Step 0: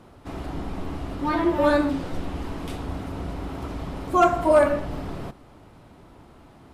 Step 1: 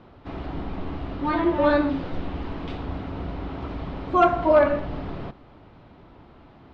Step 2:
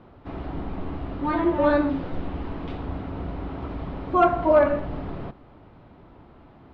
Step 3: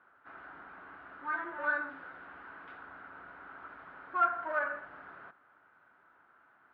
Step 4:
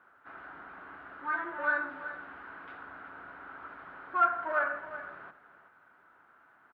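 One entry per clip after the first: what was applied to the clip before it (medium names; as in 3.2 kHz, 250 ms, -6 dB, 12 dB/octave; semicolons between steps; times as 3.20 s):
low-pass 4.2 kHz 24 dB/octave
treble shelf 3.2 kHz -9 dB
in parallel at -4 dB: saturation -20 dBFS, distortion -9 dB; on the sum: band-pass filter 1.5 kHz, Q 6.7
delay 373 ms -13 dB; trim +2.5 dB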